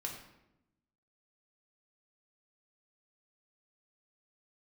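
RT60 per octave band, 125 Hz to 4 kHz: 1.2, 1.3, 0.95, 0.80, 0.75, 0.60 s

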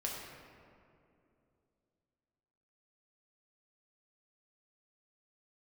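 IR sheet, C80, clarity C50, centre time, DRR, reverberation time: 2.0 dB, 0.5 dB, 98 ms, -3.0 dB, 2.6 s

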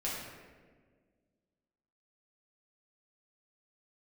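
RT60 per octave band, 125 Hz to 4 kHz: 2.0, 2.3, 1.9, 1.3, 1.3, 0.90 s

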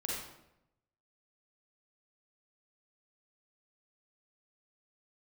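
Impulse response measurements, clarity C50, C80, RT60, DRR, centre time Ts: -1.5 dB, 3.0 dB, 0.85 s, -4.5 dB, 69 ms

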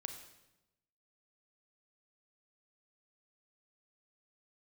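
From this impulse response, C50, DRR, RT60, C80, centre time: 7.5 dB, 5.5 dB, 0.95 s, 9.5 dB, 21 ms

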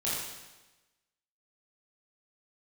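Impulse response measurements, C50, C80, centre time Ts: -1.5 dB, 1.5 dB, 86 ms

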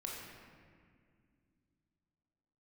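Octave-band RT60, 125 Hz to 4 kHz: 3.4, 3.4, 2.2, 1.9, 1.9, 1.3 s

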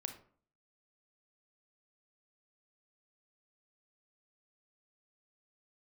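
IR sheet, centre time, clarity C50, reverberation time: 12 ms, 9.5 dB, 0.50 s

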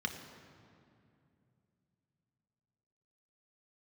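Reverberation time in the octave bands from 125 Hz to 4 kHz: 4.2, 3.6, 2.8, 2.4, 2.1, 1.6 s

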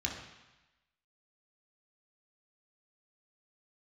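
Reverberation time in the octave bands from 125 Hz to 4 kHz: 1.0, 1.0, 0.95, 1.1, 1.2, 1.1 s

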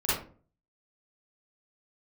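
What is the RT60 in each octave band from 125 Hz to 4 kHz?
0.60, 0.50, 0.45, 0.35, 0.30, 0.25 s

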